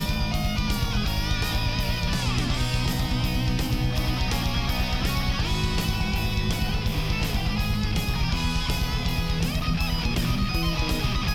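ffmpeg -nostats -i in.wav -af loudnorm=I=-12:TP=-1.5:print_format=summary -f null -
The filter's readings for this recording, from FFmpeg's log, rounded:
Input Integrated:    -25.9 LUFS
Input True Peak:     -13.8 dBTP
Input LRA:             0.4 LU
Input Threshold:     -35.9 LUFS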